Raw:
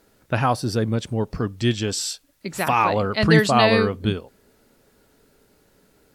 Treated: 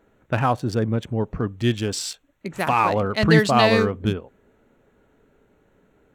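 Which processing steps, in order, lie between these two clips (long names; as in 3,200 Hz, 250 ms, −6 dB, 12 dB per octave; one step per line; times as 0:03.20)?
adaptive Wiener filter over 9 samples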